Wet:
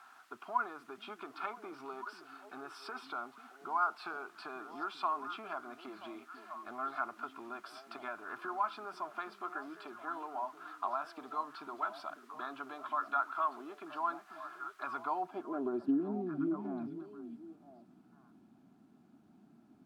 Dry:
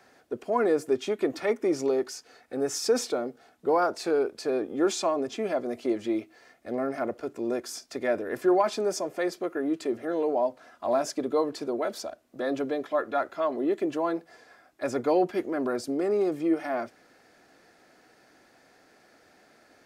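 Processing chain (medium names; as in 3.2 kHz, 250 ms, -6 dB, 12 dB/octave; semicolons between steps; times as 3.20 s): compression 3:1, threshold -33 dBFS, peak gain reduction 11.5 dB; static phaser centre 1.9 kHz, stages 6; added noise blue -57 dBFS; band-pass sweep 1.3 kHz -> 210 Hz, 14.97–16.11 s; repeats whose band climbs or falls 490 ms, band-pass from 200 Hz, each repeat 1.4 oct, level -5.5 dB; trim +10.5 dB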